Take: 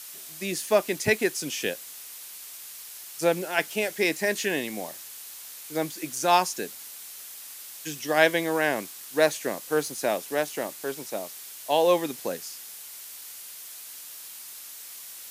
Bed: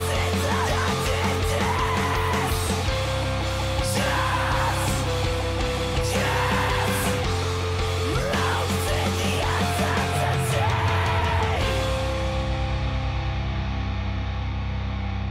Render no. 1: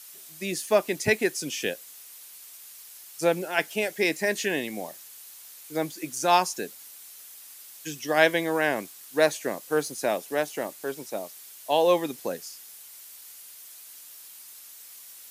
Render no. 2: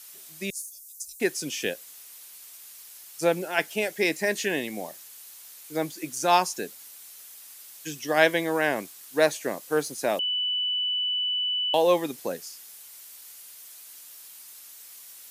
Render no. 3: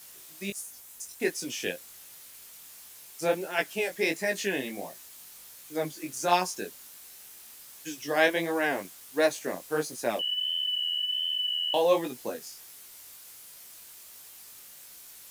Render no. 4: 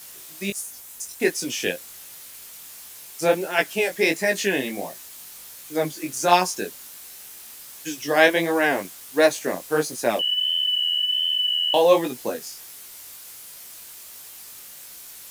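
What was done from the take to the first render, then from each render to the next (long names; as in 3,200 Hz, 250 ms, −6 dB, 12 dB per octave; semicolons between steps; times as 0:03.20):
broadband denoise 6 dB, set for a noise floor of −43 dBFS
0:00.50–0:01.20: inverse Chebyshev band-stop filter 110–2,100 Hz, stop band 60 dB; 0:10.19–0:11.74: beep over 2,980 Hz −24 dBFS
bit reduction 8 bits; chorus effect 1.4 Hz, delay 16 ms, depth 6.6 ms
level +7 dB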